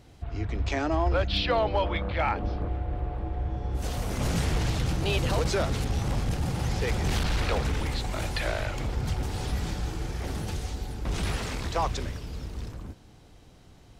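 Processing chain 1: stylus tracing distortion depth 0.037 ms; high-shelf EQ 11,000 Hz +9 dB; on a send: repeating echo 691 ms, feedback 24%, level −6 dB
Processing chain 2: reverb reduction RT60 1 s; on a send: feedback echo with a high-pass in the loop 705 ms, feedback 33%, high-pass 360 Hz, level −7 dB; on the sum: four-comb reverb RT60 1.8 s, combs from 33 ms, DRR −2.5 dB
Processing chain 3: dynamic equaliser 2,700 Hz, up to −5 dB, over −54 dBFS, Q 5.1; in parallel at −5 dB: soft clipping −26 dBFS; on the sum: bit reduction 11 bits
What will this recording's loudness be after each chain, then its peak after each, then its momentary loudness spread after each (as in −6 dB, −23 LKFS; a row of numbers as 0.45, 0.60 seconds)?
−28.5, −27.0, −27.0 LKFS; −13.5, −9.0, −15.0 dBFS; 8, 10, 8 LU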